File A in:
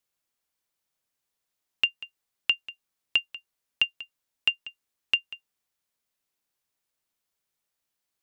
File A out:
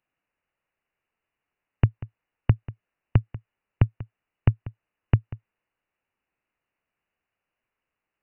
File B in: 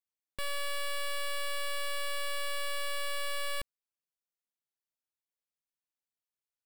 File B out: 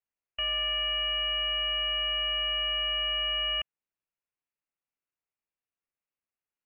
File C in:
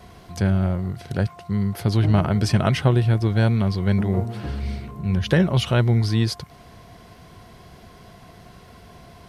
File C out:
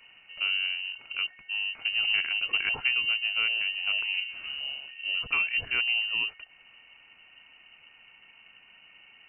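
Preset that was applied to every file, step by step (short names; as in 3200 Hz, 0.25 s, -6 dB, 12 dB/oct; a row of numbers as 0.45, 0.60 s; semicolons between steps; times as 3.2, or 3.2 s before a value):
inverted band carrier 2900 Hz; match loudness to -27 LUFS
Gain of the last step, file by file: +5.5, +2.0, -10.0 dB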